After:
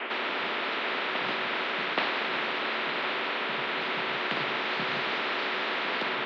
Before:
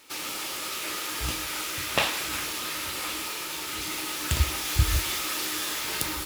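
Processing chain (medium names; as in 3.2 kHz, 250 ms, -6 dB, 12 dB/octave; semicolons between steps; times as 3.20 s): reverse echo 825 ms -15.5 dB; mistuned SSB +65 Hz 210–2100 Hz; spectrum-flattening compressor 4:1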